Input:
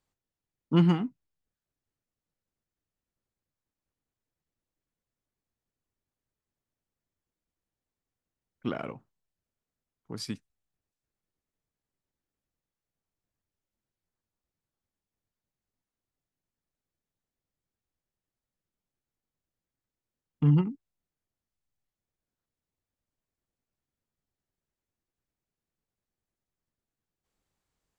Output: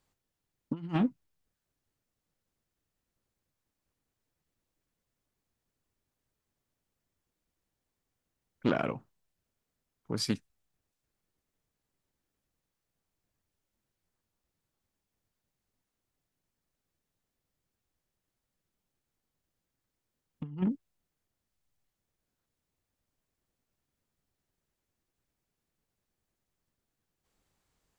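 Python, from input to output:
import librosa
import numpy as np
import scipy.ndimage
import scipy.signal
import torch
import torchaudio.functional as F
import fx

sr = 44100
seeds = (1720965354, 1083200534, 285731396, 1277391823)

y = fx.over_compress(x, sr, threshold_db=-29.0, ratio=-0.5)
y = fx.doppler_dist(y, sr, depth_ms=0.27)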